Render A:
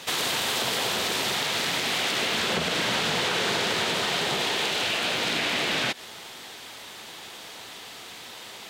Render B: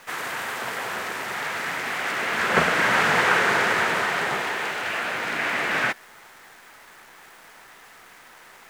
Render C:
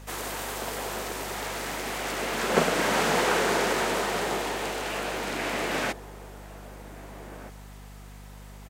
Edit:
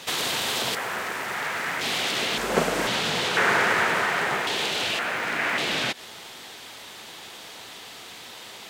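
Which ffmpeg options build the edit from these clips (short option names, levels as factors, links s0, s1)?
-filter_complex "[1:a]asplit=3[s0][s1][s2];[0:a]asplit=5[s3][s4][s5][s6][s7];[s3]atrim=end=0.752[s8];[s0]atrim=start=0.748:end=1.812[s9];[s4]atrim=start=1.808:end=2.382[s10];[2:a]atrim=start=2.378:end=2.872[s11];[s5]atrim=start=2.868:end=3.372[s12];[s1]atrim=start=3.368:end=4.472[s13];[s6]atrim=start=4.468:end=4.992[s14];[s2]atrim=start=4.988:end=5.582[s15];[s7]atrim=start=5.578[s16];[s8][s9]acrossfade=d=0.004:c1=hsin:c2=hsin[s17];[s17][s10]acrossfade=d=0.004:c1=hsin:c2=hsin[s18];[s18][s11]acrossfade=d=0.004:c1=hsin:c2=hsin[s19];[s19][s12]acrossfade=d=0.004:c1=hsin:c2=hsin[s20];[s20][s13]acrossfade=d=0.004:c1=hsin:c2=hsin[s21];[s21][s14]acrossfade=d=0.004:c1=hsin:c2=hsin[s22];[s22][s15]acrossfade=d=0.004:c1=hsin:c2=hsin[s23];[s23][s16]acrossfade=d=0.004:c1=hsin:c2=hsin"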